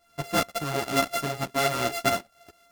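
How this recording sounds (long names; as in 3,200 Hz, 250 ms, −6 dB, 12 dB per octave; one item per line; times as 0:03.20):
a buzz of ramps at a fixed pitch in blocks of 64 samples
tremolo saw up 4.8 Hz, depth 65%
a shimmering, thickened sound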